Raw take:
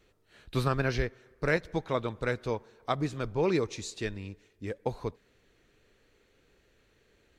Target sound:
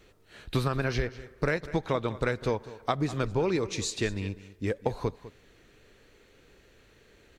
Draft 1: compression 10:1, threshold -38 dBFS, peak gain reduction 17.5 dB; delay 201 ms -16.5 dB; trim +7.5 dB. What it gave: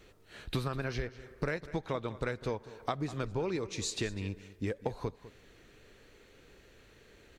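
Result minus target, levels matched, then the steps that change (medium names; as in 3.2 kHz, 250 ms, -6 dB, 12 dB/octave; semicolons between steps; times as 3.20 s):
compression: peak gain reduction +7 dB
change: compression 10:1, threshold -30.5 dBFS, peak gain reduction 10.5 dB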